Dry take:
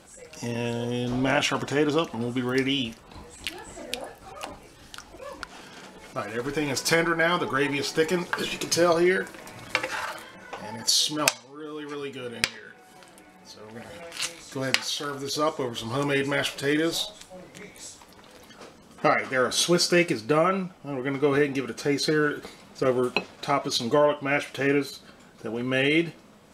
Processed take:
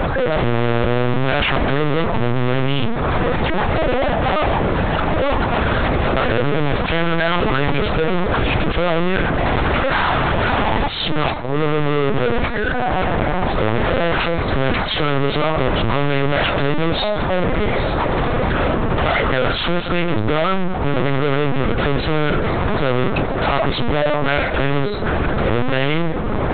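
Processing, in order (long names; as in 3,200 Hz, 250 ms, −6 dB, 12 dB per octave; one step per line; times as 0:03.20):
adaptive Wiener filter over 15 samples
downward compressor 2.5 to 1, threshold −43 dBFS, peak gain reduction 18.5 dB
power curve on the samples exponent 0.7
fuzz pedal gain 46 dB, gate −55 dBFS
linear-prediction vocoder at 8 kHz pitch kept
level −2.5 dB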